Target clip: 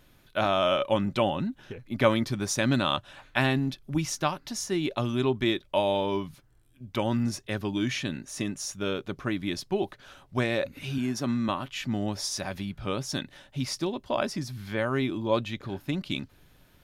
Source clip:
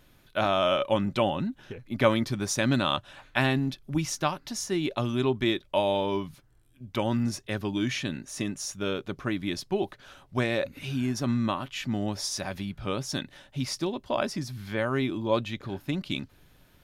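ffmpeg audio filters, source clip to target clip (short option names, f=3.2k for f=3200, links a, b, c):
-filter_complex "[0:a]asettb=1/sr,asplit=3[a][b][c];[a]atrim=end=10.984[d];[b]atrim=start=10.98:end=11.49,asetpts=PTS-STARTPTS,afade=t=in:d=0.004:c=qsin,afade=t=out:st=0.506:d=0.004:c=qsin,highpass=140[e];[c]atrim=start=11.486[f];[d][e]acrossfade=d=0.004:c1=hsin:c2=qsin[g];[g][f]acrossfade=d=0.004:c1=qsin:c2=hsin"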